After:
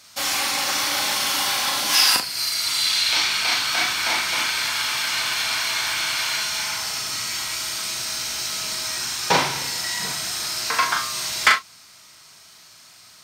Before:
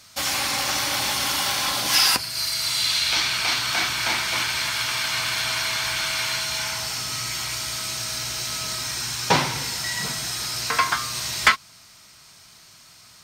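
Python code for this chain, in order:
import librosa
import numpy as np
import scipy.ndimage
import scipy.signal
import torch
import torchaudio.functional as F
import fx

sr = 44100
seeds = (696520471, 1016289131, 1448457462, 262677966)

p1 = fx.low_shelf(x, sr, hz=160.0, db=-10.5)
y = p1 + fx.room_early_taps(p1, sr, ms=(38, 68), db=(-4.0, -15.0), dry=0)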